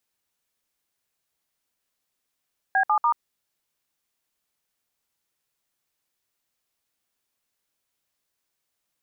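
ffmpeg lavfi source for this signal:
-f lavfi -i "aevalsrc='0.1*clip(min(mod(t,0.145),0.084-mod(t,0.145))/0.002,0,1)*(eq(floor(t/0.145),0)*(sin(2*PI*770*mod(t,0.145))+sin(2*PI*1633*mod(t,0.145)))+eq(floor(t/0.145),1)*(sin(2*PI*852*mod(t,0.145))+sin(2*PI*1209*mod(t,0.145)))+eq(floor(t/0.145),2)*(sin(2*PI*941*mod(t,0.145))+sin(2*PI*1209*mod(t,0.145))))':d=0.435:s=44100"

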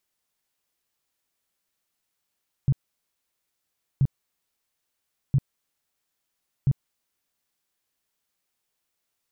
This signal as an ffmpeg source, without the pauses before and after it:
-f lavfi -i "aevalsrc='0.168*sin(2*PI*136*mod(t,1.33))*lt(mod(t,1.33),6/136)':d=5.32:s=44100"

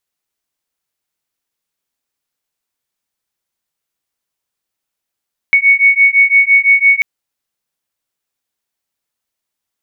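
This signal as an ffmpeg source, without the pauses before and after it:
-f lavfi -i "aevalsrc='0.335*(sin(2*PI*2220*t)+sin(2*PI*2225.9*t))':d=1.49:s=44100"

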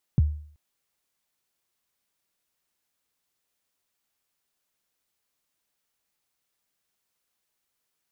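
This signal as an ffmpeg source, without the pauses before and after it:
-f lavfi -i "aevalsrc='0.224*pow(10,-3*t/0.53)*sin(2*PI*(180*0.024/log(75/180)*(exp(log(75/180)*min(t,0.024)/0.024)-1)+75*max(t-0.024,0)))':d=0.38:s=44100"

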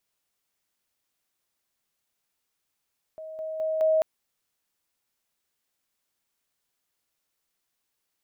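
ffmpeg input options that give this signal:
-f lavfi -i "aevalsrc='pow(10,(-36.5+6*floor(t/0.21))/20)*sin(2*PI*633*t)':d=0.84:s=44100"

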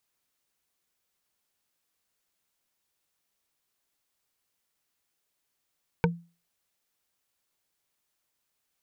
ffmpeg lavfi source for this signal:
-f lavfi -i "aevalsrc='0.126*pow(10,-3*t/0.33)*sin(2*PI*170*t)+0.112*pow(10,-3*t/0.098)*sin(2*PI*468.7*t)+0.1*pow(10,-3*t/0.044)*sin(2*PI*918.7*t)+0.0891*pow(10,-3*t/0.024)*sin(2*PI*1518.6*t)+0.0794*pow(10,-3*t/0.015)*sin(2*PI*2267.8*t)':d=0.45:s=44100"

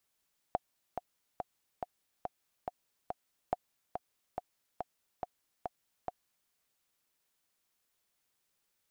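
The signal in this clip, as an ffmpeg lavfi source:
-f lavfi -i "aevalsrc='pow(10,(-16.5-6.5*gte(mod(t,7*60/141),60/141))/20)*sin(2*PI*725*mod(t,60/141))*exp(-6.91*mod(t,60/141)/0.03)':d=5.95:s=44100"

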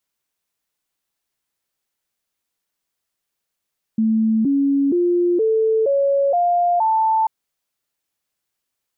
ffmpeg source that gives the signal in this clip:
-f lavfi -i "aevalsrc='0.2*clip(min(mod(t,0.47),0.47-mod(t,0.47))/0.005,0,1)*sin(2*PI*221*pow(2,floor(t/0.47)/3)*mod(t,0.47))':d=3.29:s=44100"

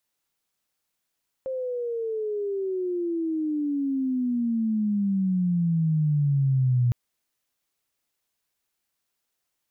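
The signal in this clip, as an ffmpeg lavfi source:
-f lavfi -i "aevalsrc='pow(10,(-27+9*t/5.46)/20)*sin(2*PI*530*5.46/log(120/530)*(exp(log(120/530)*t/5.46)-1))':d=5.46:s=44100"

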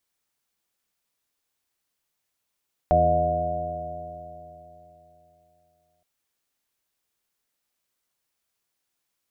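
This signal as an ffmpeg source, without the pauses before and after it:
-f lavfi -i "aevalsrc='0.0631*pow(10,-3*t/3.41)*sin(2*PI*81.93*t)+0.0473*pow(10,-3*t/3.41)*sin(2*PI*164.64*t)+0.0168*pow(10,-3*t/3.41)*sin(2*PI*248.91*t)+0.0224*pow(10,-3*t/3.41)*sin(2*PI*335.47*t)+0.0158*pow(10,-3*t/3.41)*sin(2*PI*425.05*t)+0.0224*pow(10,-3*t/3.41)*sin(2*PI*518.3*t)+0.126*pow(10,-3*t/3.41)*sin(2*PI*615.86*t)+0.126*pow(10,-3*t/3.41)*sin(2*PI*718.29*t)':d=3.12:s=44100"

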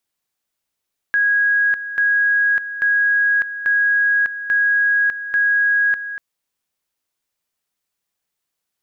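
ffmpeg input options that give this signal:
-f lavfi -i "aevalsrc='pow(10,(-13-12*gte(mod(t,0.84),0.6))/20)*sin(2*PI*1650*t)':d=5.04:s=44100"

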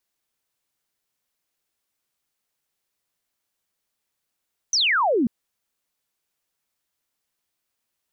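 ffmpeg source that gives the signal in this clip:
-f lavfi -i "aevalsrc='0.141*clip(t/0.002,0,1)*clip((0.54-t)/0.002,0,1)*sin(2*PI*6300*0.54/log(210/6300)*(exp(log(210/6300)*t/0.54)-1))':d=0.54:s=44100"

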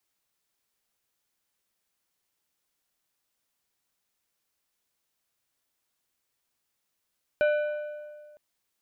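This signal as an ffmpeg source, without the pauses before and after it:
-f lavfi -i "aevalsrc='0.112*pow(10,-3*t/1.84)*sin(2*PI*598*t)+0.0422*pow(10,-3*t/1.398)*sin(2*PI*1495*t)+0.0158*pow(10,-3*t/1.214)*sin(2*PI*2392*t)+0.00596*pow(10,-3*t/1.135)*sin(2*PI*2990*t)+0.00224*pow(10,-3*t/1.049)*sin(2*PI*3887*t)':d=0.96:s=44100"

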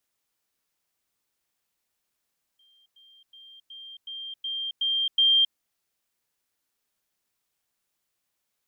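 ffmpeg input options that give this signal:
-f lavfi -i "aevalsrc='pow(10,(-58.5+6*floor(t/0.37))/20)*sin(2*PI*3180*t)*clip(min(mod(t,0.37),0.27-mod(t,0.37))/0.005,0,1)':d=2.96:s=44100"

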